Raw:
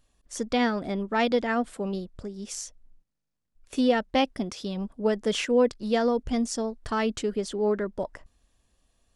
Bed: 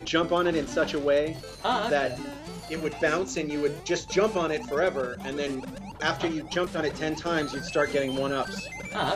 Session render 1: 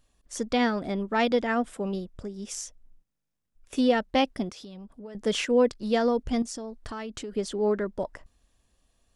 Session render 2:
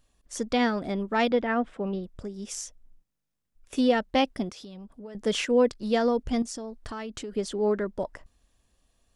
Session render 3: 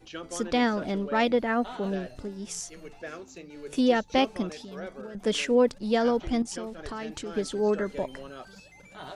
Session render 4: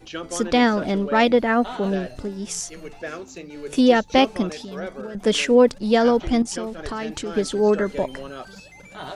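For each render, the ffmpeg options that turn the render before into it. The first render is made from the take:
-filter_complex "[0:a]asettb=1/sr,asplit=3[a][b][c];[a]atrim=end=1.254[d];[b]atrim=start=1.25:end=3.77,asetpts=PTS-STARTPTS,afade=t=in:d=0.004:c=qsin,afade=t=out:st=2.516:d=0.004:c=qsin,bandreject=f=4.3k:w=9.7[e];[c]atrim=start=3.766[f];[d][e]acrossfade=d=0.004:c1=hsin:c2=qsin[g];[g][f]acrossfade=d=0.004:c1=qsin:c2=hsin,asettb=1/sr,asplit=3[h][i][j];[h]atrim=end=4.494[k];[i]atrim=start=4.49:end=5.15,asetpts=PTS-STARTPTS,afade=t=in:d=0.004:c=qsin,afade=t=out:st=0.656:d=0.004:c=qsin,acompressor=threshold=-42dB:ratio=4:attack=3.2:release=140:knee=1:detection=peak[l];[j]atrim=start=5.146[m];[k][l]acrossfade=d=0.004:c1=hsin:c2=qsin[n];[n][m]acrossfade=d=0.004:c1=qsin:c2=hsin,asettb=1/sr,asplit=3[o][p][q];[o]atrim=end=6.424[r];[p]atrim=start=6.42:end=7.35,asetpts=PTS-STARTPTS,afade=t=in:d=0.004:c=qsin,afade=t=out:st=0.926:d=0.004:c=qsin,acompressor=threshold=-33dB:ratio=6:attack=3.2:release=140:knee=1:detection=peak[s];[q]atrim=start=7.346[t];[r][s]acrossfade=d=0.004:c1=hsin:c2=qsin[u];[u][t]acrossfade=d=0.004:c1=qsin:c2=hsin"
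-filter_complex "[0:a]asettb=1/sr,asplit=3[a][b][c];[a]atrim=end=1.314[d];[b]atrim=start=1.31:end=2.04,asetpts=PTS-STARTPTS,afade=t=in:d=0.004:c=qsin,afade=t=out:st=0.726:d=0.004:c=qsin,lowpass=3k[e];[c]atrim=start=2.036[f];[d][e]acrossfade=d=0.004:c1=hsin:c2=qsin[g];[g][f]acrossfade=d=0.004:c1=qsin:c2=hsin"
-filter_complex "[1:a]volume=-15dB[a];[0:a][a]amix=inputs=2:normalize=0"
-af "volume=7dB"

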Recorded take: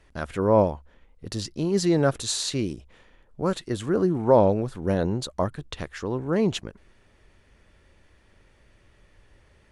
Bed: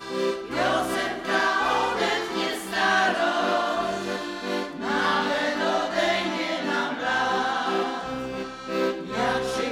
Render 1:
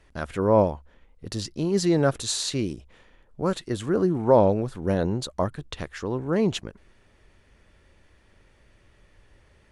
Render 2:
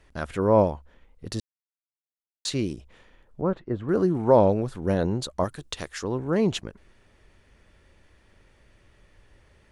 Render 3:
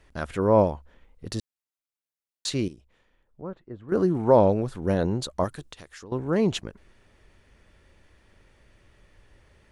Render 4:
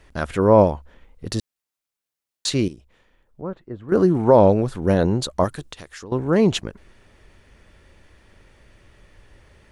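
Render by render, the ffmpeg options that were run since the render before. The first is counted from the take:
-af anull
-filter_complex "[0:a]asettb=1/sr,asplit=3[a][b][c];[a]atrim=end=3.414[d];[b]atrim=start=3.41:end=3.89,asetpts=PTS-STARTPTS,afade=t=in:d=0.004:c=qsin,afade=t=out:st=0.476:d=0.004:c=qsin,lowpass=1.2k[e];[c]atrim=start=3.886[f];[d][e]acrossfade=d=0.004:c1=hsin:c2=qsin[g];[g][f]acrossfade=d=0.004:c1=qsin:c2=hsin,asettb=1/sr,asplit=3[h][i][j];[h]atrim=end=5.444[k];[i]atrim=start=5.44:end=6.04,asetpts=PTS-STARTPTS,afade=t=in:d=0.004:c=qsin,afade=t=out:st=0.596:d=0.004:c=qsin,bass=f=250:g=-5,treble=f=4k:g=9[l];[j]atrim=start=6.036[m];[k][l]acrossfade=d=0.004:c1=hsin:c2=qsin[n];[n][m]acrossfade=d=0.004:c1=qsin:c2=hsin,asplit=3[o][p][q];[o]atrim=end=1.4,asetpts=PTS-STARTPTS,afade=t=out:st=1.396:d=0.004:c=hsin[r];[p]atrim=start=1.4:end=2.45,asetpts=PTS-STARTPTS,volume=0[s];[q]atrim=start=2.45,asetpts=PTS-STARTPTS,afade=t=in:d=0.004:c=hsin[t];[r][s][t]concat=n=3:v=0:a=1"
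-filter_complex "[0:a]asettb=1/sr,asplit=3[a][b][c];[a]atrim=end=5.674[d];[b]atrim=start=5.67:end=6.12,asetpts=PTS-STARTPTS,afade=t=in:d=0.004:c=qsin,afade=t=out:st=0.446:d=0.004:c=qsin,acompressor=threshold=-46dB:ratio=2.5:attack=3.2:release=140:knee=1:detection=peak[e];[c]atrim=start=6.116[f];[d][e]acrossfade=d=0.004:c1=hsin:c2=qsin[g];[g][f]acrossfade=d=0.004:c1=qsin:c2=hsin,asplit=3[h][i][j];[h]atrim=end=2.682[k];[i]atrim=start=2.678:end=3.922,asetpts=PTS-STARTPTS,volume=-11dB[l];[j]atrim=start=3.918[m];[k][l]acrossfade=d=0.004:c1=hsin:c2=hsin[n];[n][m]acrossfade=d=0.004:c1=hsin:c2=hsin"
-af "volume=6dB,alimiter=limit=-3dB:level=0:latency=1"

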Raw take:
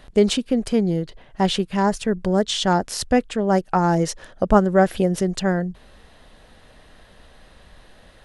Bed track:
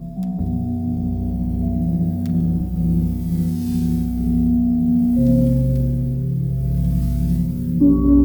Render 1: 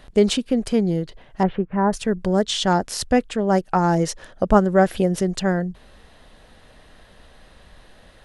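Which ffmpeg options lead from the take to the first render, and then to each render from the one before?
-filter_complex "[0:a]asettb=1/sr,asplit=3[a][b][c];[a]atrim=end=1.434[d];[b]atrim=start=1.43:end=1.93,asetpts=PTS-STARTPTS,afade=t=in:d=0.004:c=qsin,afade=t=out:st=0.496:d=0.004:c=qsin,lowpass=f=1.7k:w=0.5412,lowpass=f=1.7k:w=1.3066[e];[c]atrim=start=1.926[f];[d][e]acrossfade=d=0.004:c1=hsin:c2=qsin[g];[g][f]acrossfade=d=0.004:c1=qsin:c2=hsin"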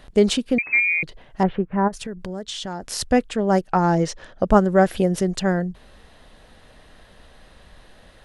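-filter_complex "[0:a]asettb=1/sr,asplit=3[a][b][c];[a]atrim=end=0.584[d];[b]atrim=start=0.58:end=1.03,asetpts=PTS-STARTPTS,afade=t=in:d=0.004:c=qsin,afade=t=out:st=0.446:d=0.004:c=qsin,lowpass=f=2.2k:t=q:w=0.5098,lowpass=f=2.2k:t=q:w=0.6013,lowpass=f=2.2k:t=q:w=0.9,lowpass=f=2.2k:t=q:w=2.563,afreqshift=-2600[e];[c]atrim=start=1.026[f];[d][e]acrossfade=d=0.004:c1=hsin:c2=qsin[g];[g][f]acrossfade=d=0.004:c1=qsin:c2=hsin,asplit=3[h][i][j];[h]afade=t=out:st=1.87:d=0.02[k];[i]acompressor=threshold=-29dB:ratio=4:attack=3.2:release=140:knee=1:detection=peak,afade=t=in:st=1.87:d=0.02,afade=t=out:st=2.82:d=0.02[l];[j]afade=t=in:st=2.82:d=0.02[m];[k][l][m]amix=inputs=3:normalize=0,asettb=1/sr,asplit=3[n][o][p];[n]atrim=end=3.674[q];[o]atrim=start=3.67:end=4.43,asetpts=PTS-STARTPTS,afade=t=in:d=0.004:c=qsin,afade=t=out:st=0.756:d=0.004:c=qsin,lowpass=6.1k[r];[p]atrim=start=4.426[s];[q][r]acrossfade=d=0.004:c1=hsin:c2=qsin[t];[t][s]acrossfade=d=0.004:c1=qsin:c2=hsin"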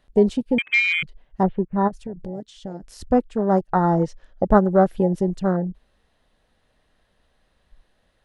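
-af "afwtdn=0.0631"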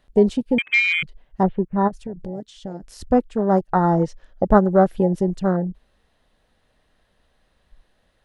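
-af "volume=1dB"

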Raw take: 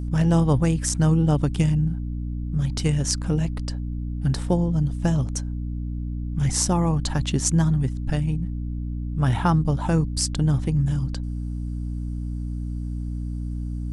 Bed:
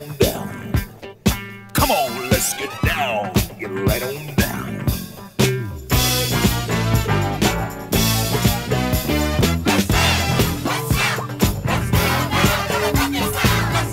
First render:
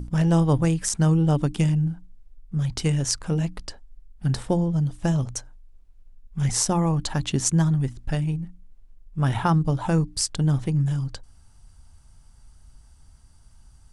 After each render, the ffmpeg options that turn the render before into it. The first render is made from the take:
-af "bandreject=f=60:t=h:w=6,bandreject=f=120:t=h:w=6,bandreject=f=180:t=h:w=6,bandreject=f=240:t=h:w=6,bandreject=f=300:t=h:w=6"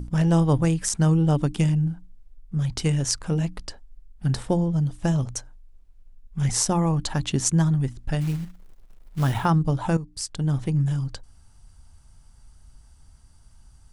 -filter_complex "[0:a]asplit=3[a][b][c];[a]afade=t=out:st=8.2:d=0.02[d];[b]acrusher=bits=5:mode=log:mix=0:aa=0.000001,afade=t=in:st=8.2:d=0.02,afade=t=out:st=9.44:d=0.02[e];[c]afade=t=in:st=9.44:d=0.02[f];[d][e][f]amix=inputs=3:normalize=0,asplit=2[g][h];[g]atrim=end=9.97,asetpts=PTS-STARTPTS,afade=t=out:st=9.966:d=0.004:c=hsin:silence=0.211349[i];[h]atrim=start=9.97,asetpts=PTS-STARTPTS,afade=t=in:d=0.75:silence=0.211349[j];[i][j]concat=n=2:v=0:a=1"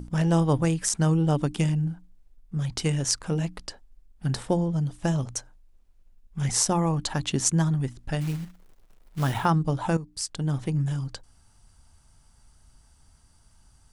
-af "lowshelf=f=130:g=-8"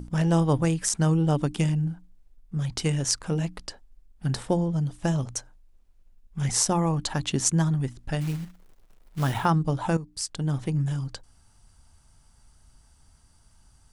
-af anull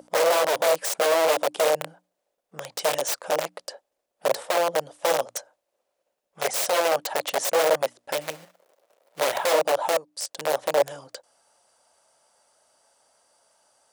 -af "aeval=exprs='(mod(10.6*val(0)+1,2)-1)/10.6':c=same,highpass=f=560:t=q:w=4.9"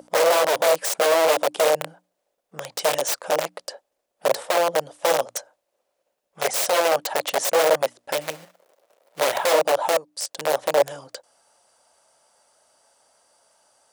-af "volume=2.5dB"

